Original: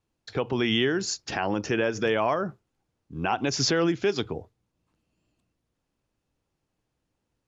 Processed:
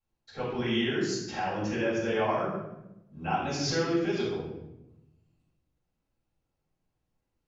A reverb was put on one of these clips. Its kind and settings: shoebox room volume 340 m³, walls mixed, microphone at 6.6 m; gain -19.5 dB

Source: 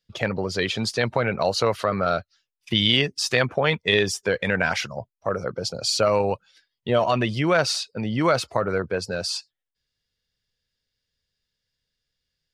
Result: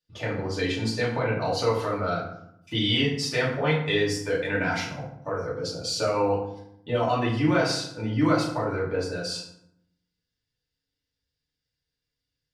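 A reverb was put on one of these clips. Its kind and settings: FDN reverb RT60 0.74 s, low-frequency decay 1.5×, high-frequency decay 0.6×, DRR -7.5 dB; gain -12 dB

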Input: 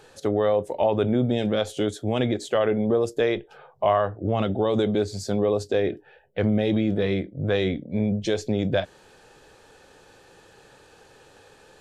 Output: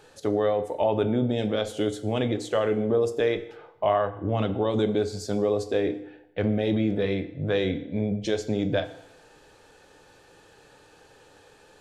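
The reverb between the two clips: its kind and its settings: FDN reverb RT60 0.87 s, low-frequency decay 0.85×, high-frequency decay 0.85×, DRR 9.5 dB; gain -2.5 dB

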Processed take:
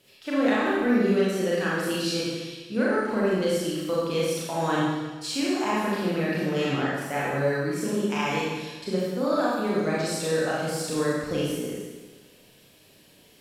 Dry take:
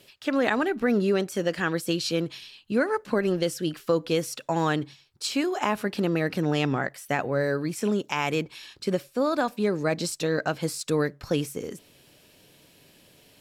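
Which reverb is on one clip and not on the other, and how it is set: Schroeder reverb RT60 1.3 s, combs from 29 ms, DRR -7 dB; gain -7 dB

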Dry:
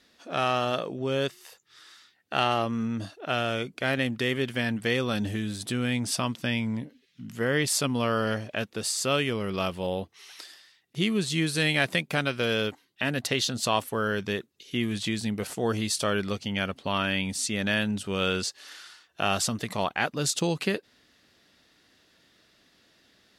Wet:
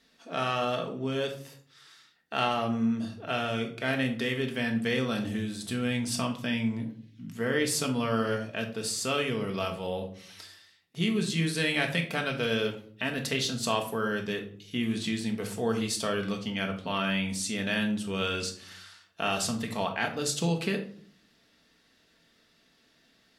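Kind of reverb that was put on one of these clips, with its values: shoebox room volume 580 m³, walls furnished, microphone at 1.6 m; gain -4.5 dB

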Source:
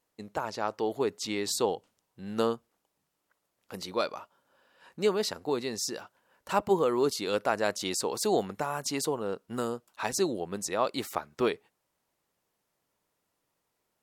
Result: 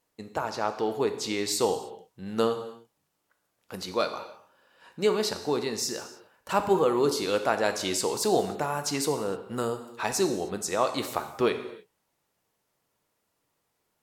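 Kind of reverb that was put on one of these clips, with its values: non-linear reverb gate 0.33 s falling, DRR 7 dB; gain +2 dB

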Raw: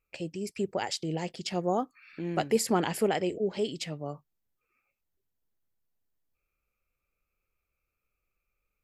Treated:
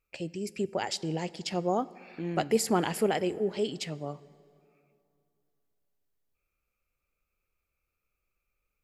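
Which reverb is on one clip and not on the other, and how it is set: plate-style reverb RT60 2.7 s, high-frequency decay 0.6×, DRR 19 dB

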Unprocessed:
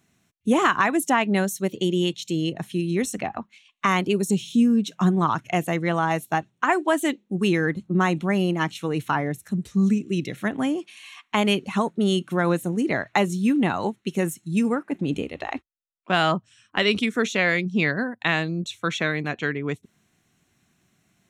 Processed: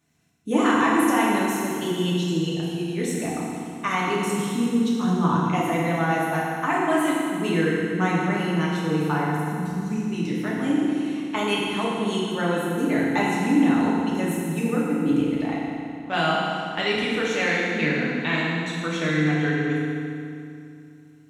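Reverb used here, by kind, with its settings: FDN reverb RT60 2.5 s, low-frequency decay 1.3×, high-frequency decay 0.85×, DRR -6.5 dB; gain -7.5 dB

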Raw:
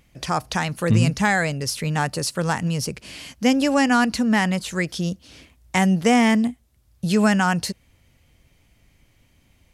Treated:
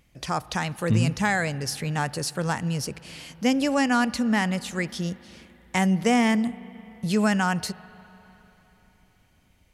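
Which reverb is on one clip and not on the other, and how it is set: spring tank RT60 3.8 s, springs 37/42/49 ms, chirp 25 ms, DRR 18.5 dB; gain -4 dB

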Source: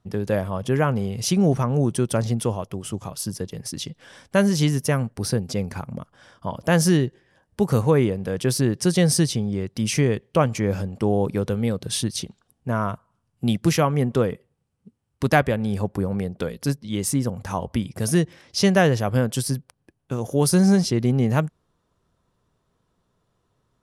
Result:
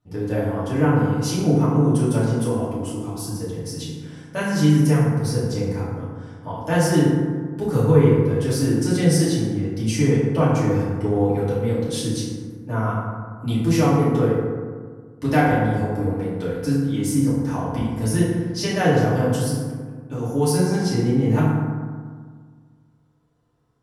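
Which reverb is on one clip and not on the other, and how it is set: FDN reverb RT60 1.7 s, low-frequency decay 1.25×, high-frequency decay 0.4×, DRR -10 dB; gain -10.5 dB

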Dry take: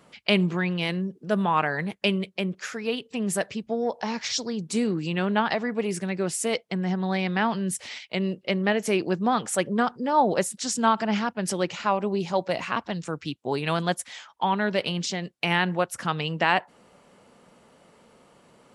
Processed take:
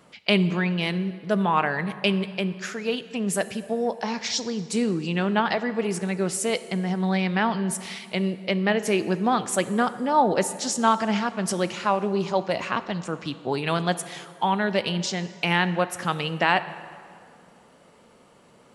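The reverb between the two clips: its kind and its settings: plate-style reverb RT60 2.2 s, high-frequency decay 0.7×, DRR 13 dB; gain +1 dB

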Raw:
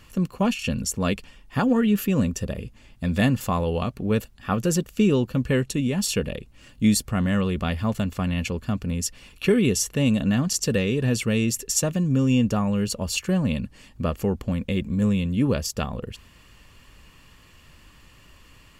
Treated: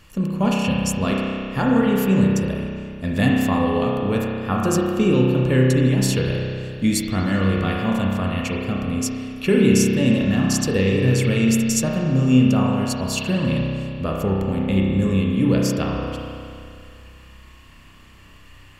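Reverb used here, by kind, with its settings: spring tank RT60 2.4 s, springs 31 ms, chirp 50 ms, DRR -2.5 dB

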